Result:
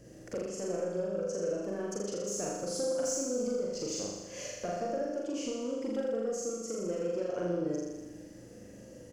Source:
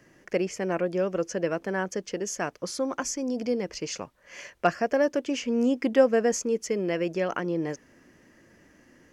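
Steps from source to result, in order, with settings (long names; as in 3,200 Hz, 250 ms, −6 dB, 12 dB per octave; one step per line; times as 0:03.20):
double-tracking delay 50 ms −5.5 dB
mains hum 60 Hz, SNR 34 dB
octave-band graphic EQ 125/500/1,000/2,000/8,000 Hz +5/+11/−9/−9/+7 dB
downward compressor 5 to 1, threshold −33 dBFS, peak gain reduction 23 dB
soft clipping −26.5 dBFS, distortion −20 dB
notch filter 410 Hz, Q 12
on a send: flutter between parallel walls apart 6.9 metres, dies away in 1.2 s
on the sum: level −1.5 dB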